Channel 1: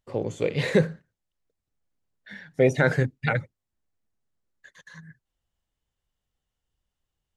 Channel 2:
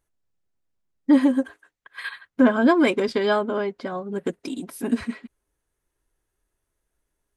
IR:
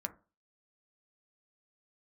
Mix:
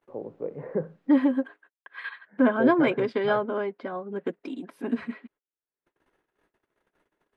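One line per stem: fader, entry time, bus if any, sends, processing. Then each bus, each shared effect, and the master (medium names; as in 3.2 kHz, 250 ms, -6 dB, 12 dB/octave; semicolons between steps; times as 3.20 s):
-7.0 dB, 0.00 s, no send, low-pass 1.2 kHz 24 dB/octave
-3.0 dB, 0.00 s, no send, upward compressor, threshold -34 dBFS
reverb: none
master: gate -54 dBFS, range -30 dB; three-band isolator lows -24 dB, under 170 Hz, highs -22 dB, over 3.3 kHz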